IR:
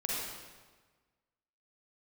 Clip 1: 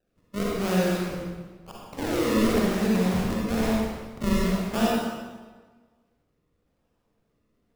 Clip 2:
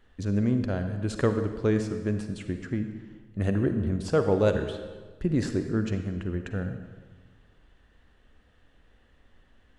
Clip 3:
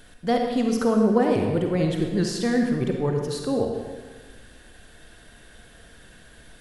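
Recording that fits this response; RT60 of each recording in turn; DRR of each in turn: 1; 1.4 s, 1.4 s, 1.4 s; -5.5 dB, 7.0 dB, 2.0 dB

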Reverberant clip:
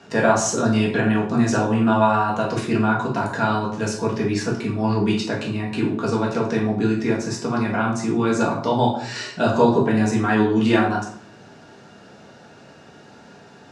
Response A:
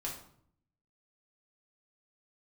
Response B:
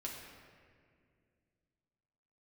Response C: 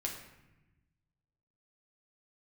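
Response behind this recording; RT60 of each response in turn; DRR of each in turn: A; 0.65 s, 2.1 s, 1.0 s; -3.5 dB, -3.5 dB, -1.0 dB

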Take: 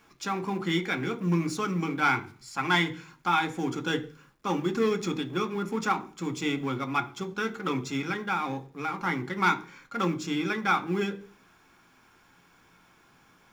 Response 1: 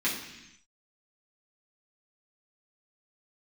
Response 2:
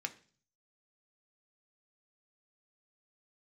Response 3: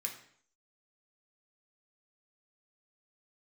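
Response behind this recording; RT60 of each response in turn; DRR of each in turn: 2; 0.85 s, 0.40 s, 0.60 s; -8.0 dB, 6.0 dB, 1.0 dB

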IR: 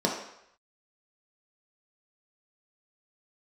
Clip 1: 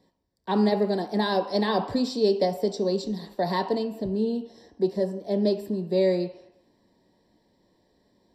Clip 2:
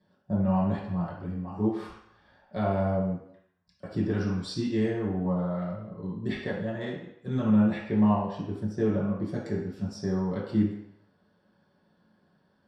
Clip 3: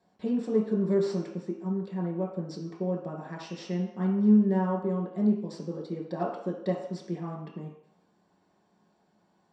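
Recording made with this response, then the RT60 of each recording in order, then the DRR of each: 3; 0.75 s, 0.75 s, 0.75 s; 7.0 dB, -7.0 dB, -2.0 dB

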